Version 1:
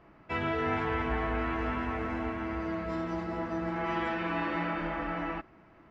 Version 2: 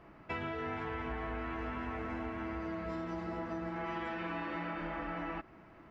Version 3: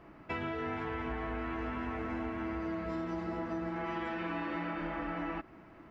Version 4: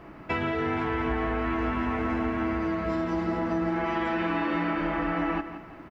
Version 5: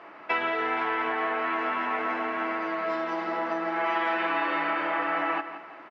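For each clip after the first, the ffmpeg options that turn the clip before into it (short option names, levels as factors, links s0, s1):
-af "acompressor=threshold=0.0141:ratio=6,volume=1.12"
-af "equalizer=f=290:w=2.4:g=3.5,volume=1.12"
-af "aecho=1:1:170|340|510|680:0.251|0.0904|0.0326|0.0117,volume=2.66"
-af "highpass=610,lowpass=4200,volume=1.68"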